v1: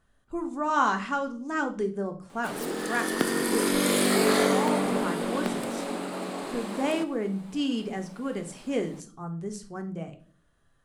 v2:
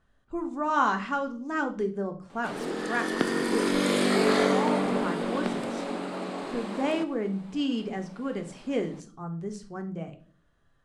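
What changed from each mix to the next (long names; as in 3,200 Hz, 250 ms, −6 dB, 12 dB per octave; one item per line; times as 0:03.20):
master: add high-frequency loss of the air 69 metres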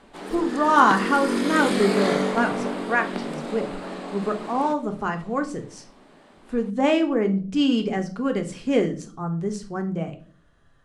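speech +8.0 dB
background: entry −2.30 s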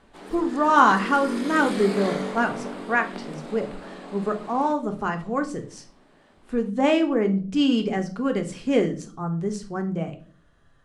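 background −6.0 dB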